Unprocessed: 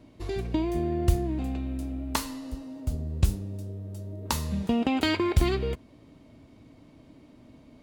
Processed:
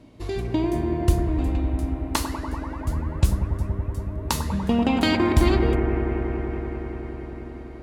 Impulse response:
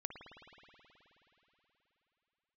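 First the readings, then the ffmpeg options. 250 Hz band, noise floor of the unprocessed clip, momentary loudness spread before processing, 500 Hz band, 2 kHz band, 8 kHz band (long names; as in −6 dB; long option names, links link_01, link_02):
+5.5 dB, −54 dBFS, 13 LU, +5.5 dB, +5.0 dB, +3.5 dB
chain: -filter_complex "[1:a]atrim=start_sample=2205,asetrate=25137,aresample=44100[link_01];[0:a][link_01]afir=irnorm=-1:irlink=0,volume=4.5dB"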